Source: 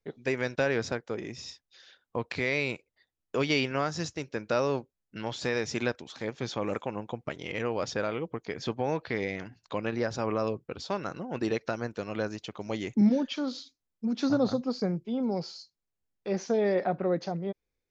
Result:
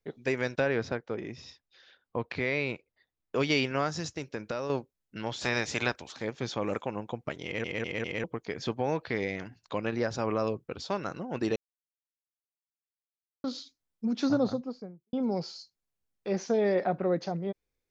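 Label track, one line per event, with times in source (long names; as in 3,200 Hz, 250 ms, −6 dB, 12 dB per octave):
0.600000	3.360000	high-frequency loss of the air 150 metres
3.890000	4.700000	downward compressor, threshold −29 dBFS
5.400000	6.120000	ceiling on every frequency bin ceiling under each frame's peak by 14 dB
7.440000	7.440000	stutter in place 0.20 s, 4 plays
11.560000	13.440000	silence
14.230000	15.130000	fade out and dull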